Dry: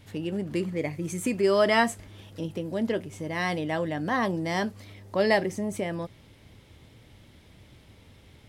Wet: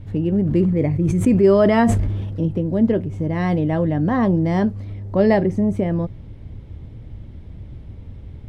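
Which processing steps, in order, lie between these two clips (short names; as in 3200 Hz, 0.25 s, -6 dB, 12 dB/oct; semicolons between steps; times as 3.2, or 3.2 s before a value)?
tilt -4.5 dB/oct; 0.41–2.48 sustainer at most 30 dB/s; gain +2.5 dB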